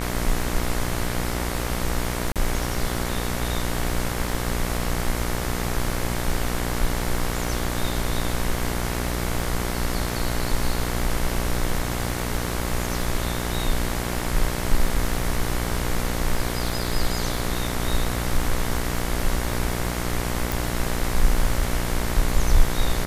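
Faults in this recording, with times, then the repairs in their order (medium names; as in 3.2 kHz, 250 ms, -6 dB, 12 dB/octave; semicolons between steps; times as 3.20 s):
buzz 60 Hz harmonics 38 -28 dBFS
crackle 25 per s -30 dBFS
2.32–2.36 s: dropout 37 ms
20.52 s: pop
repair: de-click; de-hum 60 Hz, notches 38; interpolate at 2.32 s, 37 ms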